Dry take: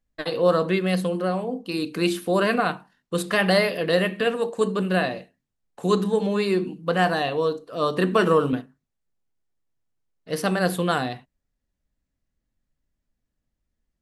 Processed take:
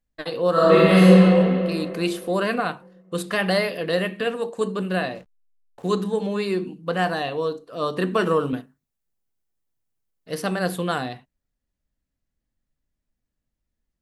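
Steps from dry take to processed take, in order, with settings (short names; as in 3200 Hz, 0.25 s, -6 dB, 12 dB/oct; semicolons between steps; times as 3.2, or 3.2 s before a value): 0.52–1.12 reverb throw, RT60 2.6 s, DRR -11 dB; 5.15–5.9 backlash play -40 dBFS; 8.54–10.35 high shelf 9300 Hz +11 dB; gain -2 dB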